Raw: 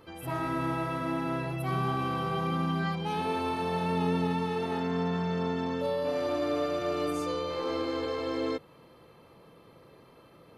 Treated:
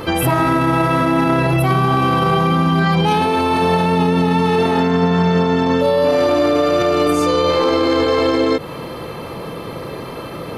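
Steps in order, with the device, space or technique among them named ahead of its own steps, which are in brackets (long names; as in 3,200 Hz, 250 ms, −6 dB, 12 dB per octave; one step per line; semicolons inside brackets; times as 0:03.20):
loud club master (downward compressor 2 to 1, threshold −33 dBFS, peak gain reduction 5.5 dB; hard clipping −24 dBFS, distortion −47 dB; boost into a limiter +33.5 dB)
level −6.5 dB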